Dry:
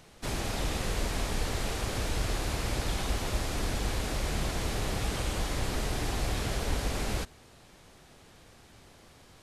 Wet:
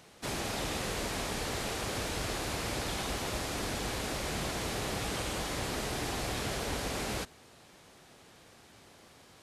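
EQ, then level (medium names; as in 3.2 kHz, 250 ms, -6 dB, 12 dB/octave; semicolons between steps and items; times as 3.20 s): high-pass 160 Hz 6 dB/octave; 0.0 dB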